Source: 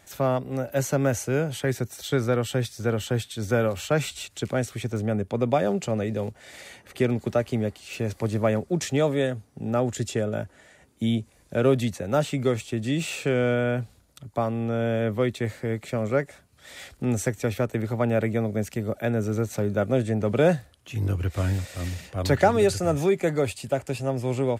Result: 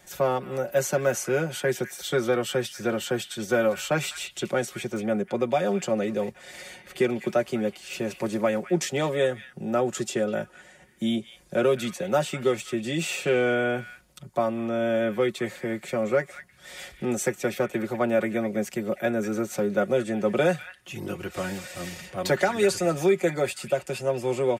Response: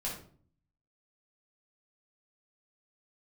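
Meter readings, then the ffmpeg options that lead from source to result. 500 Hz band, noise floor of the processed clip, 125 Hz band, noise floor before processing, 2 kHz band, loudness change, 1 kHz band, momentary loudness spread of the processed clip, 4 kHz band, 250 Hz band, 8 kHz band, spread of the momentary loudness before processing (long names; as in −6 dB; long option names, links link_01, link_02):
+0.5 dB, −54 dBFS, −8.5 dB, −58 dBFS, +2.5 dB, −0.5 dB, 0.0 dB, 9 LU, +1.5 dB, −1.5 dB, +1.5 dB, 9 LU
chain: -filter_complex "[0:a]bandreject=frequency=4000:width=27,aecho=1:1:5.5:0.71,acrossover=split=190|1400|3400[link_01][link_02][link_03][link_04];[link_01]acompressor=threshold=-44dB:ratio=5[link_05];[link_02]alimiter=limit=-13dB:level=0:latency=1:release=319[link_06];[link_03]aecho=1:1:200:0.447[link_07];[link_05][link_06][link_07][link_04]amix=inputs=4:normalize=0"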